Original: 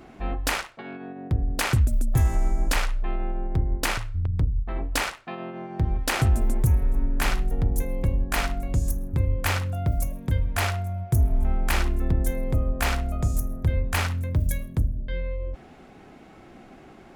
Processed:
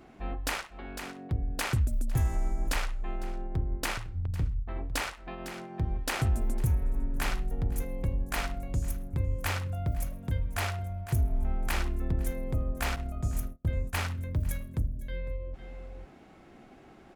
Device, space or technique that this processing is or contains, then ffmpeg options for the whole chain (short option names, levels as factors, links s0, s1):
ducked delay: -filter_complex "[0:a]asplit=3[s0][s1][s2];[s1]adelay=504,volume=0.447[s3];[s2]apad=whole_len=778834[s4];[s3][s4]sidechaincompress=threshold=0.02:ratio=8:attack=11:release=350[s5];[s0][s5]amix=inputs=2:normalize=0,asettb=1/sr,asplit=3[s6][s7][s8];[s6]atrim=end=12.964[s9];[s7]atrim=start=12.96:end=14.08,asetpts=PTS-STARTPTS,afade=t=in:d=0.004:c=qsin,afade=t=out:st=1.116:d=0.004:c=qsin,agate=range=0.0251:threshold=0.0501:ratio=16:detection=peak[s10];[s8]atrim=start=14.076[s11];[s9][s10]acrossfade=d=0.004:c1=hsin:c2=qsin[s12];[s12][s11]acrossfade=d=0.004:c1=qsin:c2=hsin,volume=0.473"